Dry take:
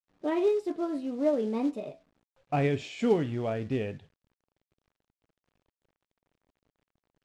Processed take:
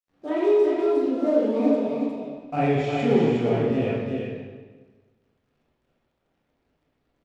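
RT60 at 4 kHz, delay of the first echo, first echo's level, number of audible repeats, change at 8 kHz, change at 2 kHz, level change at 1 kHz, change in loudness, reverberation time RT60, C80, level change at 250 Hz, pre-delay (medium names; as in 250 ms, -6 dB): 1.1 s, 361 ms, -4.5 dB, 1, no reading, +6.0 dB, +6.5 dB, +6.5 dB, 1.4 s, -1.0 dB, +7.5 dB, 19 ms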